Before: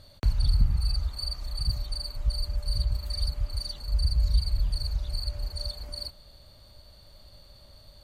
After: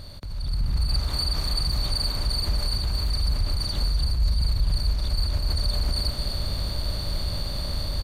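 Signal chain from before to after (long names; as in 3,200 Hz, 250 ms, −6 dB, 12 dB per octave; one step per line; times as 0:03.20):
compressor on every frequency bin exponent 0.6
0:00.88–0:03.03: low-shelf EQ 120 Hz −8 dB
brickwall limiter −28.5 dBFS, peak gain reduction 18 dB
automatic gain control gain up to 12 dB
single-tap delay 252 ms −7 dB
level −1.5 dB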